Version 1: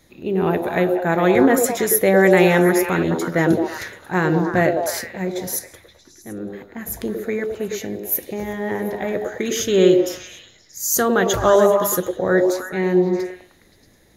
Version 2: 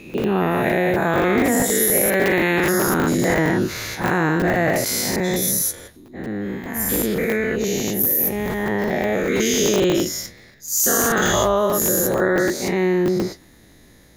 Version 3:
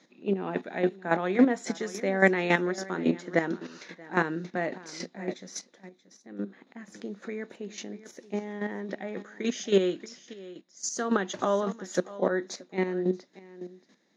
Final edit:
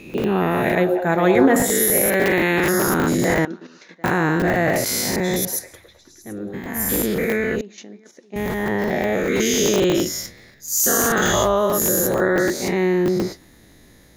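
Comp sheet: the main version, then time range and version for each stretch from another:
2
0:00.75–0:01.56: punch in from 1
0:03.45–0:04.04: punch in from 3
0:05.45–0:06.54: punch in from 1
0:07.61–0:08.36: punch in from 3

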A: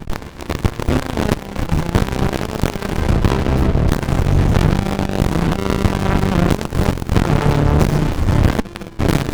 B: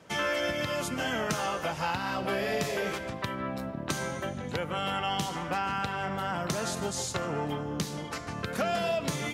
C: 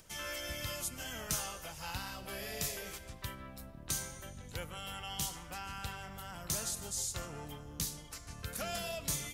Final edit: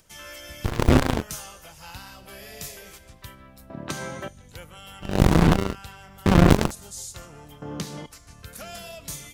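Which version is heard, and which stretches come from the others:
C
0:00.68–0:01.18: punch in from A, crossfade 0.10 s
0:03.70–0:04.28: punch in from B
0:05.13–0:05.64: punch in from A, crossfade 0.24 s
0:06.26–0:06.71: punch in from A
0:07.62–0:08.06: punch in from B

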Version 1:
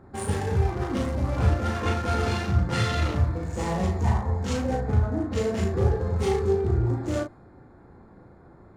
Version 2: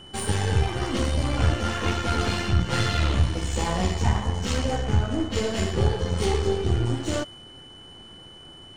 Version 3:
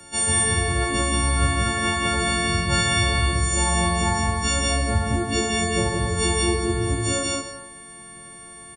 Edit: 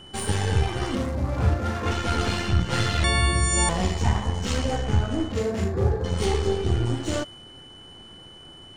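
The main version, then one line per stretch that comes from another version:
2
0:00.95–0:01.91: punch in from 1
0:03.04–0:03.69: punch in from 3
0:05.32–0:06.04: punch in from 1

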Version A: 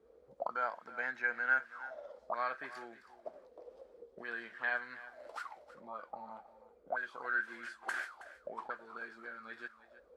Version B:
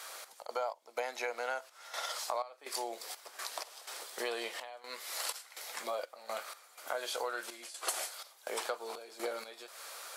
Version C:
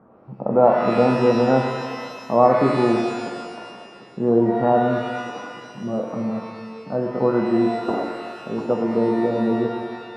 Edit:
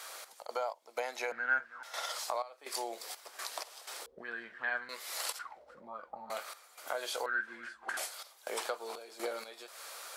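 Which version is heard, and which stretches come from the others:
B
0:01.32–0:01.83: punch in from A
0:04.06–0:04.89: punch in from A
0:05.39–0:06.30: punch in from A
0:07.26–0:07.97: punch in from A
not used: C

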